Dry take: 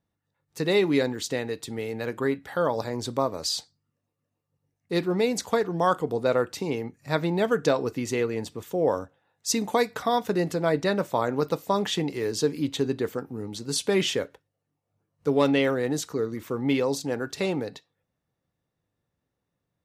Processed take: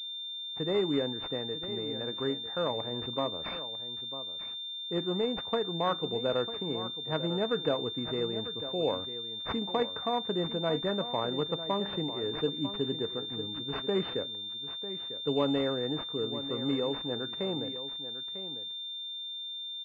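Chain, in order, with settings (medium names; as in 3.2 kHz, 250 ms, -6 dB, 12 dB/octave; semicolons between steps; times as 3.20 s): on a send: delay 948 ms -12 dB; on the sum: class-D stage that switches slowly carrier 3.6 kHz; trim -6.5 dB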